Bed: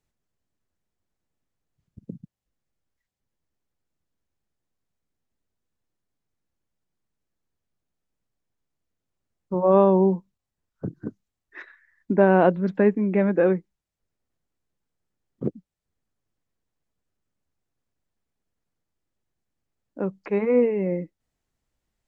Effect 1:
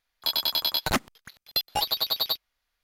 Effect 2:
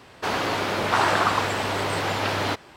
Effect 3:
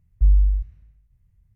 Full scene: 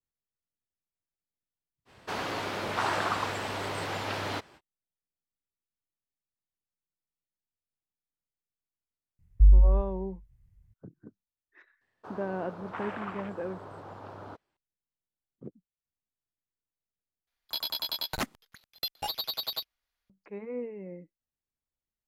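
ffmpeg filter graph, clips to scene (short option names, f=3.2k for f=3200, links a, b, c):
-filter_complex "[2:a]asplit=2[a][b];[0:a]volume=-17dB[c];[3:a]asplit=2[d][e];[e]adelay=431.5,volume=-25dB,highshelf=f=4k:g=-9.71[f];[d][f]amix=inputs=2:normalize=0[g];[b]afwtdn=0.0631[h];[c]asplit=2[i][j];[i]atrim=end=17.274[k];[1:a]atrim=end=2.83,asetpts=PTS-STARTPTS,volume=-7.5dB[l];[j]atrim=start=20.096[m];[a]atrim=end=2.76,asetpts=PTS-STARTPTS,volume=-8.5dB,afade=t=in:d=0.05,afade=t=out:st=2.71:d=0.05,adelay=1850[n];[g]atrim=end=1.55,asetpts=PTS-STARTPTS,volume=-1.5dB,afade=t=in:d=0.004:c=hsin,afade=t=out:st=1.546:d=0.004:c=hsin,adelay=9190[o];[h]atrim=end=2.76,asetpts=PTS-STARTPTS,volume=-17.5dB,afade=t=in:d=0.004:c=hsin,afade=t=out:st=2.756:d=0.004:c=hsin,adelay=11810[p];[k][l]acrossfade=d=0.004:c1=hsin:c2=hsin[q];[q][m]acrossfade=d=0.004:c1=hsin:c2=hsin[r];[r][n][o][p]amix=inputs=4:normalize=0"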